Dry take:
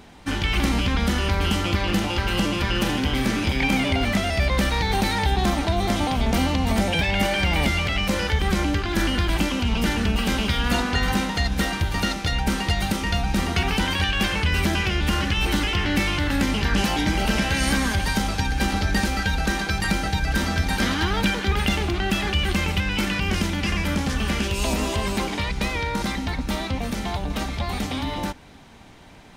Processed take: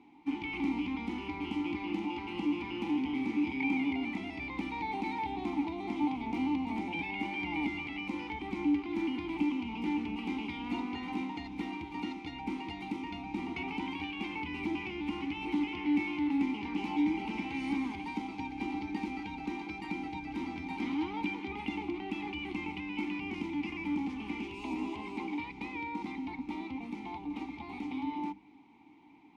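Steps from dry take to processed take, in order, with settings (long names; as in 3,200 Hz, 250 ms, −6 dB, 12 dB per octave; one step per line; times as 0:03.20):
formant filter u
mains-hum notches 50/100/150/200 Hz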